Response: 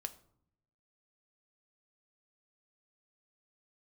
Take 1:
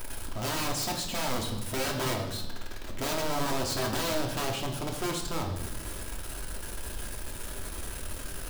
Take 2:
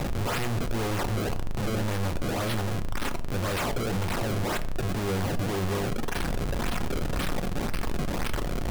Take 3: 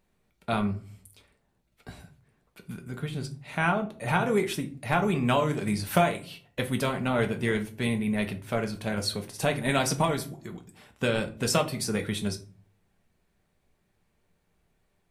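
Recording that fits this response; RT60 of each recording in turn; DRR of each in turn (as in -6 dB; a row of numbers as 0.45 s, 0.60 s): 2; 0.95 s, 0.65 s, 0.40 s; 0.5 dB, 9.0 dB, 4.5 dB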